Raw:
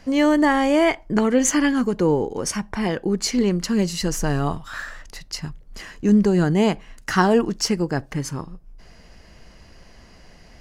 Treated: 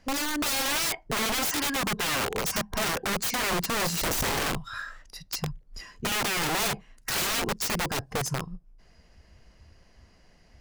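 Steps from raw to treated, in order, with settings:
noise reduction from a noise print of the clip's start 11 dB
wrap-around overflow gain 22.5 dB

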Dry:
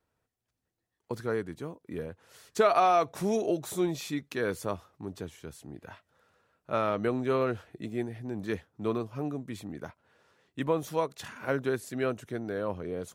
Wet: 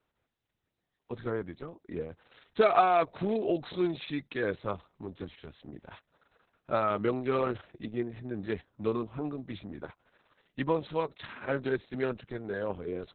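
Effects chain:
high-shelf EQ 3,200 Hz +2.5 dB
0:01.15–0:01.63: treble cut that deepens with the level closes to 2,200 Hz, closed at −26.5 dBFS
Opus 6 kbit/s 48,000 Hz

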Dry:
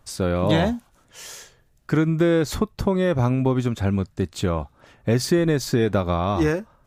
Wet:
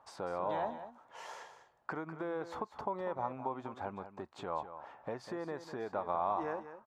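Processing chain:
downward compressor 3 to 1, threshold −34 dBFS, peak gain reduction 14.5 dB
resonant band-pass 880 Hz, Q 3.1
on a send: single-tap delay 198 ms −11.5 dB
on the sum: level +8 dB

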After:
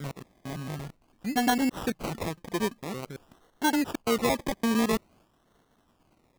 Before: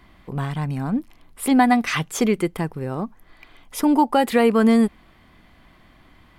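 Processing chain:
slices reordered back to front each 113 ms, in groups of 4
downward expander −47 dBFS
low-shelf EQ 95 Hz −12 dB
sample-and-hold swept by an LFO 25×, swing 60% 0.49 Hz
level −7.5 dB

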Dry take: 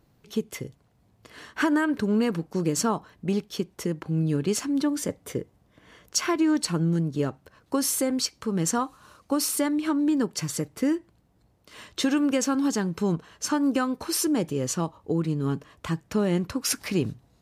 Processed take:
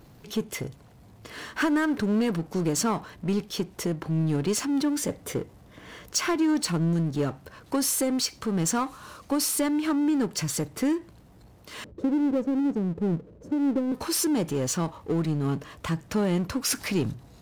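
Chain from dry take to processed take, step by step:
0:11.84–0:13.92: elliptic low-pass filter 550 Hz, stop band 40 dB
power curve on the samples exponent 0.7
level −4 dB

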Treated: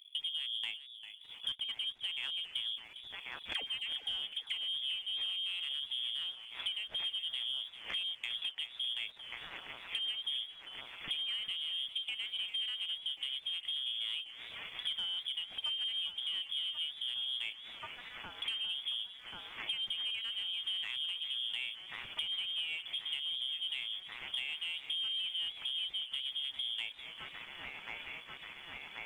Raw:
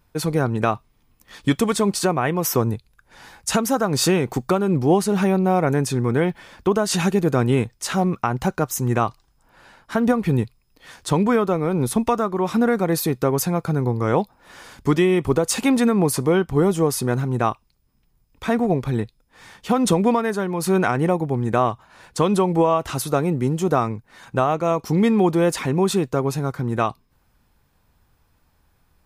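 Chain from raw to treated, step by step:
adaptive Wiener filter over 25 samples
low-shelf EQ 210 Hz +7 dB
delay with a high-pass on its return 1,085 ms, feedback 83%, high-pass 1,800 Hz, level −10 dB
voice inversion scrambler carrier 3,400 Hz
downward compressor 8 to 1, threshold −33 dBFS, peak gain reduction 22 dB
leveller curve on the samples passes 1
0:03.53–0:04.56: all-pass dispersion lows, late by 96 ms, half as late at 820 Hz
feedback echo with a swinging delay time 400 ms, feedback 32%, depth 103 cents, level −13 dB
level −6.5 dB

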